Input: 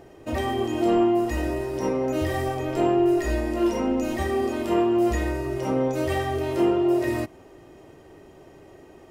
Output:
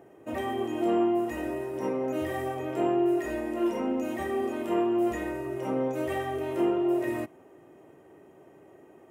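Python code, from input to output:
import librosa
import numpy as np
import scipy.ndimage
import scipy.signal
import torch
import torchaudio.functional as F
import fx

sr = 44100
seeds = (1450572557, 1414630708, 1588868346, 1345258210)

y = fx.dynamic_eq(x, sr, hz=3600.0, q=0.83, threshold_db=-44.0, ratio=4.0, max_db=4)
y = scipy.signal.sosfilt(scipy.signal.butter(2, 150.0, 'highpass', fs=sr, output='sos'), y)
y = fx.peak_eq(y, sr, hz=4600.0, db=-15.0, octaves=1.0)
y = F.gain(torch.from_numpy(y), -4.5).numpy()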